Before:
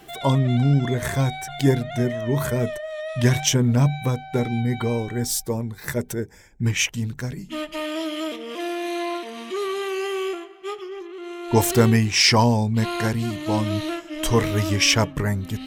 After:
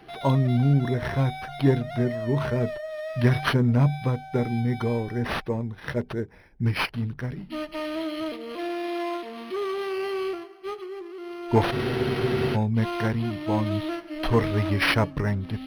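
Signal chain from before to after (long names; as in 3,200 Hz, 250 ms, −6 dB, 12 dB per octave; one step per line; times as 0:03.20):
frozen spectrum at 0:11.75, 0.81 s
linearly interpolated sample-rate reduction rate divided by 6×
level −2 dB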